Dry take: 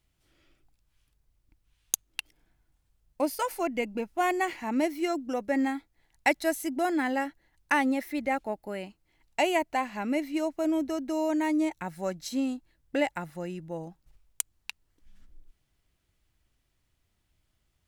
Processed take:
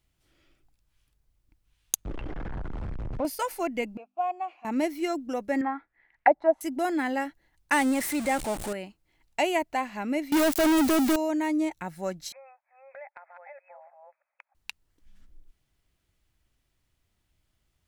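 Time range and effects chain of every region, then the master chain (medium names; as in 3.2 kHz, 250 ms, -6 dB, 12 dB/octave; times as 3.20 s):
2.05–3.25 s: jump at every zero crossing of -26 dBFS + low-pass 1.1 kHz + three bands compressed up and down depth 40%
3.97–4.65 s: vowel filter a + hum notches 50/100/150/200/250/300 Hz
5.61–6.61 s: bass shelf 230 Hz -12 dB + touch-sensitive low-pass 720–2100 Hz down, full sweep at -23 dBFS
7.72–8.73 s: jump at every zero crossing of -31 dBFS + peaking EQ 8.6 kHz +11 dB 0.59 oct
10.32–11.16 s: zero-crossing glitches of -26.5 dBFS + waveshaping leveller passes 5
12.32–14.55 s: chunks repeated in reverse 317 ms, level -6.5 dB + brick-wall FIR band-pass 530–2600 Hz + compression 2.5:1, threshold -48 dBFS
whole clip: none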